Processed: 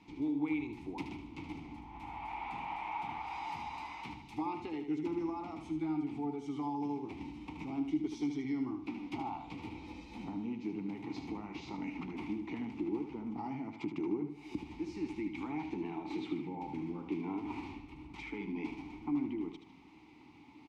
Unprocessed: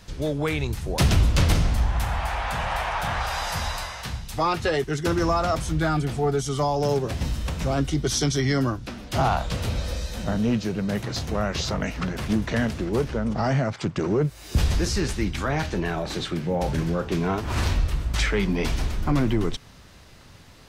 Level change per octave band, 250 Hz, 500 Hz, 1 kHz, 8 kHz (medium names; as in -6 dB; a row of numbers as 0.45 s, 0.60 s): -9.0 dB, -18.0 dB, -13.5 dB, under -30 dB